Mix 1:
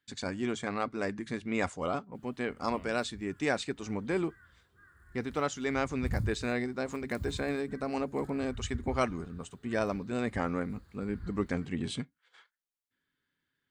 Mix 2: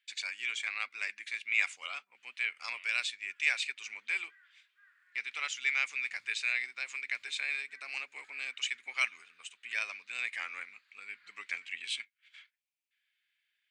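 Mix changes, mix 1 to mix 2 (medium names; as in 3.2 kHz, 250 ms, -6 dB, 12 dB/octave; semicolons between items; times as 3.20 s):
background: add distance through air 110 m; master: add resonant high-pass 2.4 kHz, resonance Q 4.7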